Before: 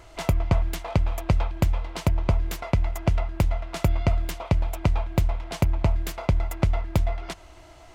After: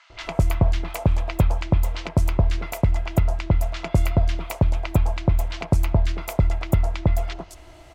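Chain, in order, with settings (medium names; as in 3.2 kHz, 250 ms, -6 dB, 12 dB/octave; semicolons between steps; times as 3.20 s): three bands offset in time mids, lows, highs 100/210 ms, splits 1.1/5.8 kHz; trim +3 dB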